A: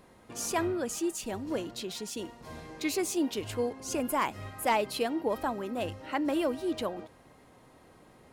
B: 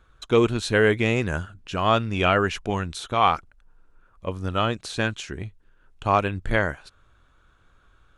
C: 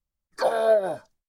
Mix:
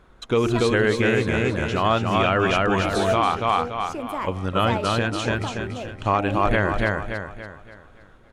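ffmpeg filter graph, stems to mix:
-filter_complex "[0:a]lowpass=f=2.6k:p=1,volume=0dB[a];[1:a]highshelf=f=5.3k:g=-4.5,volume=3dB,asplit=3[b][c][d];[c]volume=-3dB[e];[2:a]adelay=2400,volume=-3dB[f];[d]apad=whole_len=162614[g];[f][g]sidechaincompress=threshold=-28dB:ratio=8:attack=16:release=155[h];[e]aecho=0:1:285|570|855|1140|1425|1710:1|0.41|0.168|0.0689|0.0283|0.0116[i];[a][b][h][i]amix=inputs=4:normalize=0,bandreject=f=87.82:t=h:w=4,bandreject=f=175.64:t=h:w=4,bandreject=f=263.46:t=h:w=4,bandreject=f=351.28:t=h:w=4,bandreject=f=439.1:t=h:w=4,bandreject=f=526.92:t=h:w=4,bandreject=f=614.74:t=h:w=4,bandreject=f=702.56:t=h:w=4,bandreject=f=790.38:t=h:w=4,bandreject=f=878.2:t=h:w=4,alimiter=limit=-9dB:level=0:latency=1:release=169"

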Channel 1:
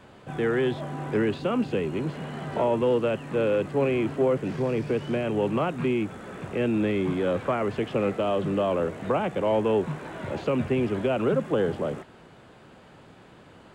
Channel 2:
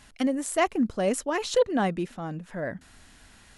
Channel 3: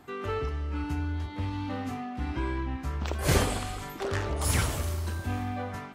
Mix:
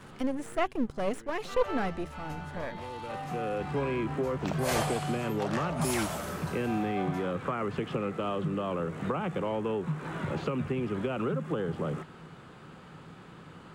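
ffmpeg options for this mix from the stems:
-filter_complex "[0:a]equalizer=f=160:t=o:w=0.33:g=9,equalizer=f=630:t=o:w=0.33:g=-6,equalizer=f=1.25k:t=o:w=0.33:g=6,acompressor=threshold=-28dB:ratio=6,volume=0dB[a];[1:a]aeval=exprs='if(lt(val(0),0),0.251*val(0),val(0))':c=same,acrossover=split=2800[b][c];[c]acompressor=threshold=-45dB:ratio=4:attack=1:release=60[d];[b][d]amix=inputs=2:normalize=0,volume=-2dB,asplit=2[e][f];[2:a]lowshelf=f=450:t=q:w=3:g=-12.5,adelay=1400,volume=-4dB[g];[f]apad=whole_len=606186[h];[a][h]sidechaincompress=threshold=-47dB:ratio=8:attack=8.9:release=801[i];[i][e][g]amix=inputs=3:normalize=0"

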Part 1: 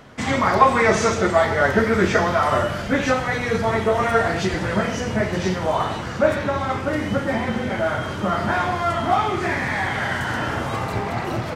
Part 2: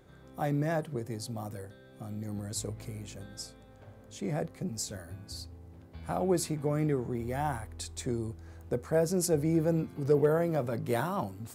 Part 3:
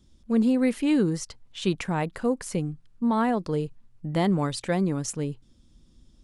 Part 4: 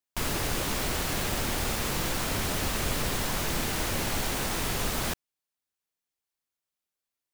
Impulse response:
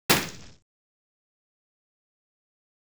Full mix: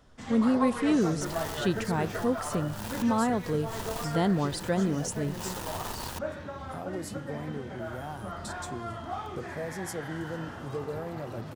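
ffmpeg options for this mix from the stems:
-filter_complex "[0:a]volume=-17dB[a];[1:a]acompressor=threshold=-42dB:ratio=2,adelay=650,volume=0.5dB[b];[2:a]volume=-2.5dB,asplit=2[c][d];[3:a]equalizer=f=930:t=o:w=0.34:g=14,acrusher=bits=3:mix=0:aa=0.5,adelay=1050,volume=-9.5dB[e];[d]apad=whole_len=369861[f];[e][f]sidechaincompress=threshold=-43dB:ratio=8:attack=7.3:release=118[g];[a][b][c][g]amix=inputs=4:normalize=0,equalizer=f=2.2k:w=4.8:g=-6.5"

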